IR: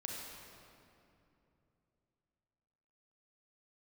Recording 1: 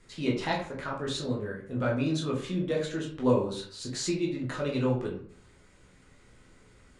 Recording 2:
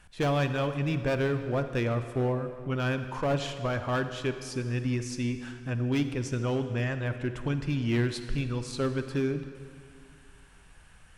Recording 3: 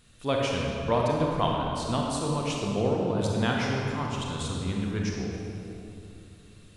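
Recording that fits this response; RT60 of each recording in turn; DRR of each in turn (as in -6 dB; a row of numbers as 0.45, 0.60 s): 3; 0.55, 2.2, 2.9 s; -3.5, 9.0, -2.0 dB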